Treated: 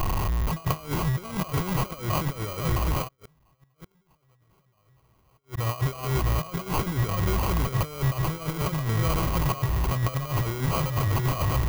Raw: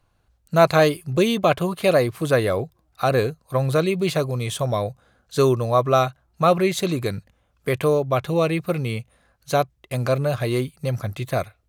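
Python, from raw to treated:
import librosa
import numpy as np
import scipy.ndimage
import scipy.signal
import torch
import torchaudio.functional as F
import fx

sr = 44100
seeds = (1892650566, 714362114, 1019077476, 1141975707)

y = x + 0.5 * 10.0 ** (-19.5 / 20.0) * np.sign(x)
y = fx.echo_feedback(y, sr, ms=662, feedback_pct=16, wet_db=-9)
y = fx.over_compress(y, sr, threshold_db=-21.0, ratio=-0.5)
y = fx.sample_hold(y, sr, seeds[0], rate_hz=1800.0, jitter_pct=0)
y = fx.peak_eq(y, sr, hz=960.0, db=8.0, octaves=0.37)
y = fx.small_body(y, sr, hz=(1100.0, 1900.0), ring_ms=45, db=13)
y = fx.gate_flip(y, sr, shuts_db=-17.0, range_db=-38, at=(3.07, 5.57), fade=0.02)
y = fx.graphic_eq(y, sr, hz=(250, 500, 1000, 2000, 4000, 8000), db=(-8, -6, -10, -5, -4, -5))
y = y * 10.0 ** (-1.0 / 20.0)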